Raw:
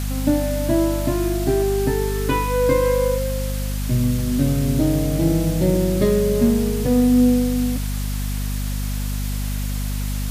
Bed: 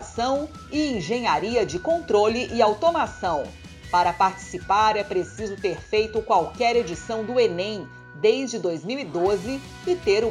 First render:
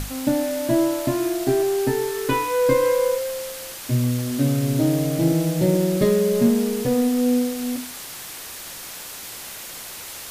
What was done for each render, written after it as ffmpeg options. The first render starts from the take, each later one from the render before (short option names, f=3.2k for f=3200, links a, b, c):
-af "bandreject=f=50:t=h:w=6,bandreject=f=100:t=h:w=6,bandreject=f=150:t=h:w=6,bandreject=f=200:t=h:w=6,bandreject=f=250:t=h:w=6,bandreject=f=300:t=h:w=6"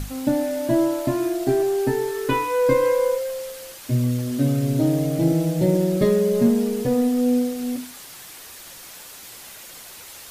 -af "afftdn=nr=6:nf=-36"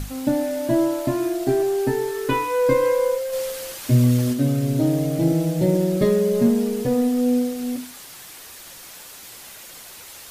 -filter_complex "[0:a]asplit=3[a][b][c];[a]afade=t=out:st=3.32:d=0.02[d];[b]acontrast=36,afade=t=in:st=3.32:d=0.02,afade=t=out:st=4.32:d=0.02[e];[c]afade=t=in:st=4.32:d=0.02[f];[d][e][f]amix=inputs=3:normalize=0"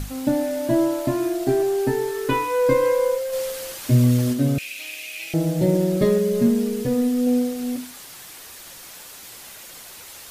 -filter_complex "[0:a]asettb=1/sr,asplit=3[a][b][c];[a]atrim=end=4.584[d];[b]atrim=start=4.58:end=5.34,asetpts=PTS-STARTPTS,afade=t=in:d=0.004:c=qsin,afade=t=out:st=0.756:d=0.004:c=qsin,highpass=f=2.5k:t=q:w=13[e];[c]atrim=start=5.336[f];[d][e]acrossfade=d=0.004:c1=hsin:c2=qsin[g];[g][f]acrossfade=d=0.004:c1=qsin:c2=hsin,asettb=1/sr,asplit=3[h][i][j];[h]atrim=end=6.184[k];[i]atrim=start=6.18:end=7.27,asetpts=PTS-STARTPTS,afade=t=in:d=0.004:c=qsin,afade=t=out:st=1.086:d=0.004:c=qsin,equalizer=f=760:w=1.5:g=-6.5[l];[j]atrim=start=7.266[m];[k][l]acrossfade=d=0.004:c1=hsin:c2=qsin[n];[n][m]acrossfade=d=0.004:c1=qsin:c2=hsin"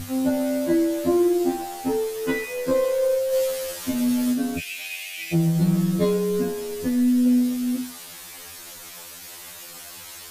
-filter_complex "[0:a]asplit=2[a][b];[b]asoftclip=type=tanh:threshold=-20dB,volume=-7.5dB[c];[a][c]amix=inputs=2:normalize=0,afftfilt=real='re*2*eq(mod(b,4),0)':imag='im*2*eq(mod(b,4),0)':win_size=2048:overlap=0.75"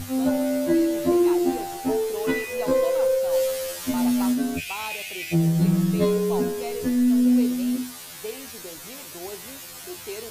-filter_complex "[1:a]volume=-16dB[a];[0:a][a]amix=inputs=2:normalize=0"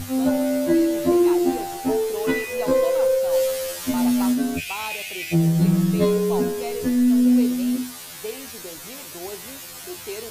-af "volume=2dB"